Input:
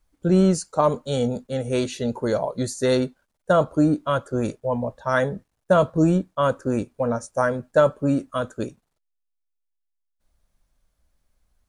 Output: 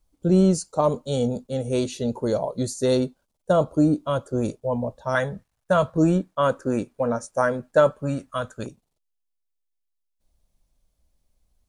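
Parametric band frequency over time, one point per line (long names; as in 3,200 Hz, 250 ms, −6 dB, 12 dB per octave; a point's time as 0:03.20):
parametric band −9.5 dB 1.1 octaves
1,700 Hz
from 0:05.15 330 Hz
from 0:05.95 70 Hz
from 0:07.91 330 Hz
from 0:08.66 1,500 Hz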